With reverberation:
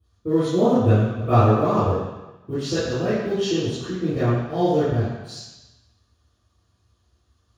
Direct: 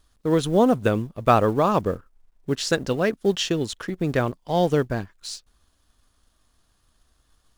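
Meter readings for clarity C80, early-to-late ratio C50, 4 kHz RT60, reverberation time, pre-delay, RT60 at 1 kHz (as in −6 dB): 0.5 dB, −3.0 dB, 1.1 s, 1.0 s, 3 ms, 1.1 s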